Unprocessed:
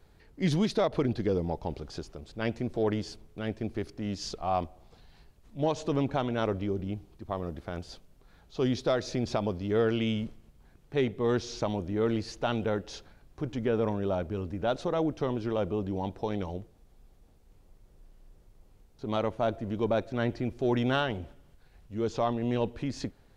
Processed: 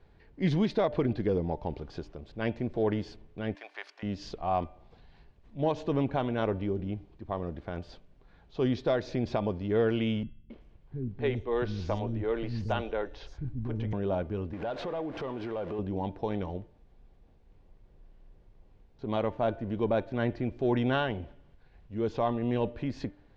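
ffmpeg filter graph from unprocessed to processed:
-filter_complex "[0:a]asettb=1/sr,asplit=3[s0][s1][s2];[s0]atrim=end=3.554[s3];[s1]atrim=start=3.55:end=4.03,asetpts=PTS-STARTPTS,afade=t=in:d=0.004:c=qsin,afade=t=out:st=0.476:d=0.004:c=qsin,highpass=f=820:w=0.5412,highpass=f=820:w=1.3066,acontrast=77[s4];[s2]atrim=start=4.026[s5];[s3][s4]acrossfade=d=0.004:c1=hsin:c2=qsin[s6];[s6][s5]acrossfade=d=0.004:c1=qsin:c2=hsin,asettb=1/sr,asplit=3[s7][s8][s9];[s7]atrim=end=10.234[s10];[s8]atrim=start=10.23:end=13.93,asetpts=PTS-STARTPTS,afade=t=in:d=0.004:c=qsin,afade=t=out:st=3.696:d=0.004:c=qsin,asubboost=boost=3.5:cutoff=110,acrossover=split=270|5900[s11][s12][s13];[s12]adelay=270[s14];[s13]adelay=380[s15];[s11][s14][s15]amix=inputs=3:normalize=0,atrim=end_sample=163170[s16];[s9]atrim=start=13.926[s17];[s10][s16]acrossfade=d=0.004:c1=hsin:c2=qsin[s18];[s18][s17]acrossfade=d=0.004:c1=qsin:c2=hsin,asettb=1/sr,asplit=3[s19][s20][s21];[s19]atrim=end=14.534[s22];[s20]atrim=start=14.53:end=15.79,asetpts=PTS-STARTPTS,afade=t=in:d=0.004:c=qsin,afade=t=out:st=1.256:d=0.004:c=qsin,aeval=exprs='val(0)+0.5*0.00841*sgn(val(0))':c=same,acompressor=threshold=0.02:ratio=10:attack=3.2:release=140:knee=1:detection=peak,asplit=2[s23][s24];[s24]highpass=f=720:p=1,volume=6.31,asoftclip=type=tanh:threshold=0.075[s25];[s23][s25]amix=inputs=2:normalize=0,lowpass=f=2400:p=1,volume=0.501[s26];[s21]atrim=start=15.786[s27];[s22][s26]acrossfade=d=0.004:c1=hsin:c2=qsin[s28];[s28][s27]acrossfade=d=0.004:c1=qsin:c2=hsin,lowpass=3200,bandreject=f=1300:w=12,bandreject=f=297.3:t=h:w=4,bandreject=f=594.6:t=h:w=4,bandreject=f=891.9:t=h:w=4,bandreject=f=1189.2:t=h:w=4,bandreject=f=1486.5:t=h:w=4,bandreject=f=1783.8:t=h:w=4,bandreject=f=2081.1:t=h:w=4,bandreject=f=2378.4:t=h:w=4,bandreject=f=2675.7:t=h:w=4,bandreject=f=2973:t=h:w=4,bandreject=f=3270.3:t=h:w=4"

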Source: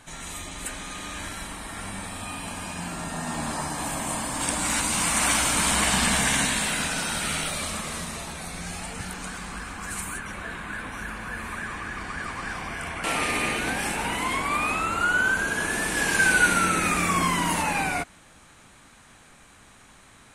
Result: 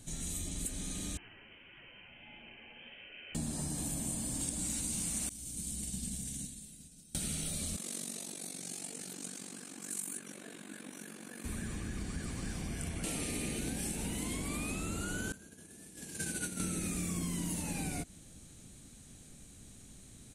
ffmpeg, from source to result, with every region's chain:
-filter_complex "[0:a]asettb=1/sr,asplit=3[s0][s1][s2];[s0]atrim=end=1.174[s3];[s1]atrim=start=1.17:end=3.35,asetpts=PTS-STARTPTS,afade=t=in:d=0.004:c=qsin,afade=t=out:st=2.176:d=0.004:c=qsin,highpass=320,lowpass=f=2800:t=q:w=0.5098,lowpass=f=2800:t=q:w=0.6013,lowpass=f=2800:t=q:w=0.9,lowpass=f=2800:t=q:w=2.563,afreqshift=-3300,flanger=delay=4.8:depth=8.2:regen=-57:speed=1.6:shape=triangular[s4];[s2]atrim=start=3.346[s5];[s3][s4]acrossfade=d=0.004:c1=hsin:c2=qsin[s6];[s6][s5]acrossfade=d=0.004:c1=qsin:c2=hsin,asettb=1/sr,asplit=3[s7][s8][s9];[s7]atrim=end=5.294[s10];[s8]atrim=start=5.29:end=7.15,asetpts=PTS-STARTPTS,afade=t=in:d=0.004:c=qsin,afade=t=out:st=1.856:d=0.004:c=qsin,agate=range=0.0224:threshold=0.2:ratio=3:release=100:detection=peak,equalizer=f=1200:t=o:w=2.8:g=-12.5[s11];[s9]atrim=start=7.146[s12];[s10][s11]acrossfade=d=0.004:c1=hsin:c2=qsin[s13];[s13][s12]acrossfade=d=0.004:c1=qsin:c2=hsin,asettb=1/sr,asplit=3[s14][s15][s16];[s14]atrim=end=7.764[s17];[s15]atrim=start=7.76:end=11.45,asetpts=PTS-STARTPTS,afade=t=in:d=0.004:c=qsin,afade=t=out:st=3.686:d=0.004:c=qsin,highpass=f=250:w=0.5412,highpass=f=250:w=1.3066,tremolo=f=47:d=0.788[s18];[s16]atrim=start=11.446[s19];[s17][s18]acrossfade=d=0.004:c1=hsin:c2=qsin[s20];[s20][s19]acrossfade=d=0.004:c1=qsin:c2=hsin,asettb=1/sr,asplit=3[s21][s22][s23];[s21]atrim=end=15.324[s24];[s22]atrim=start=15.32:end=16.6,asetpts=PTS-STARTPTS,afade=t=in:d=0.004:c=qsin,afade=t=out:st=1.276:d=0.004:c=qsin,agate=range=0.0224:threshold=0.2:ratio=3:release=100:detection=peak,highpass=74[s25];[s23]atrim=start=16.596[s26];[s24][s25]acrossfade=d=0.004:c1=hsin:c2=qsin[s27];[s27][s26]acrossfade=d=0.004:c1=qsin:c2=hsin,firequalizer=gain_entry='entry(180,0);entry(1000,-23);entry(4700,-1)':delay=0.05:min_phase=1,acompressor=threshold=0.0158:ratio=6,equalizer=f=5000:t=o:w=0.44:g=-6,volume=1.33"

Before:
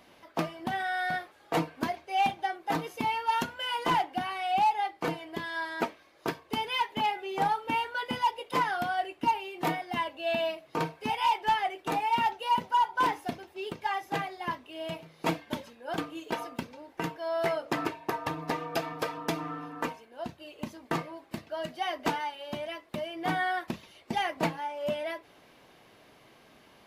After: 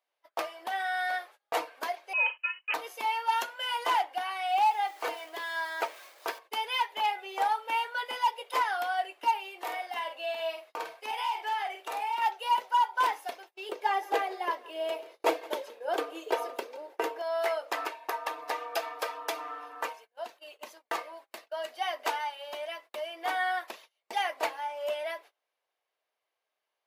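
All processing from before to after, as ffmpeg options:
-filter_complex "[0:a]asettb=1/sr,asplit=3[s0][s1][s2];[s0]atrim=end=2.134[s3];[s1]atrim=start=2.13:end=2.74,asetpts=PTS-STARTPTS,afade=t=in:d=0.004:c=qsin,afade=t=out:st=0.606:d=0.004:c=qsin,agate=range=0.112:threshold=0.00501:ratio=16:release=100:detection=peak,highpass=f=560:p=1,lowpass=f=2800:t=q:w=0.5098,lowpass=f=2800:t=q:w=0.6013,lowpass=f=2800:t=q:w=0.9,lowpass=f=2800:t=q:w=2.563,afreqshift=-3300[s4];[s2]atrim=start=2.736[s5];[s3][s4]acrossfade=d=0.004:c1=hsin:c2=qsin[s6];[s6][s5]acrossfade=d=0.004:c1=qsin:c2=hsin,asettb=1/sr,asplit=3[s7][s8][s9];[s7]atrim=end=4.524[s10];[s8]atrim=start=4.52:end=6.39,asetpts=PTS-STARTPTS,afade=t=in:d=0.004:c=qsin,afade=t=out:st=1.866:d=0.004:c=qsin,aeval=exprs='val(0)+0.5*0.00447*sgn(val(0))':c=same,bandreject=f=230:w=7.1[s11];[s9]atrim=start=6.386[s12];[s10][s11]acrossfade=d=0.004:c1=hsin:c2=qsin[s13];[s13][s12]acrossfade=d=0.004:c1=qsin:c2=hsin,asettb=1/sr,asplit=3[s14][s15][s16];[s14]atrim=end=9.614[s17];[s15]atrim=start=9.61:end=12.22,asetpts=PTS-STARTPTS,afade=t=in:d=0.004:c=qsin,afade=t=out:st=2.606:d=0.004:c=qsin,acompressor=threshold=0.0316:ratio=5:attack=3.2:release=140:knee=1:detection=peak,asplit=2[s18][s19];[s19]adelay=49,volume=0.501[s20];[s18][s20]amix=inputs=2:normalize=0,atrim=end_sample=115101[s21];[s16]atrim=start=12.216[s22];[s17][s21]acrossfade=d=0.004:c1=hsin:c2=qsin[s23];[s23][s22]acrossfade=d=0.004:c1=qsin:c2=hsin,asettb=1/sr,asplit=3[s24][s25][s26];[s24]atrim=end=13.694[s27];[s25]atrim=start=13.69:end=17.22,asetpts=PTS-STARTPTS,afade=t=in:d=0.004:c=qsin,afade=t=out:st=3.526:d=0.004:c=qsin,equalizer=f=400:t=o:w=1.2:g=14,aecho=1:1:169:0.0944,atrim=end_sample=155673[s28];[s26]atrim=start=17.216[s29];[s27][s28]acrossfade=d=0.004:c1=hsin:c2=qsin[s30];[s30][s29]acrossfade=d=0.004:c1=qsin:c2=hsin,highpass=f=490:w=0.5412,highpass=f=490:w=1.3066,agate=range=0.0447:threshold=0.00316:ratio=16:detection=peak,highshelf=f=11000:g=5.5"

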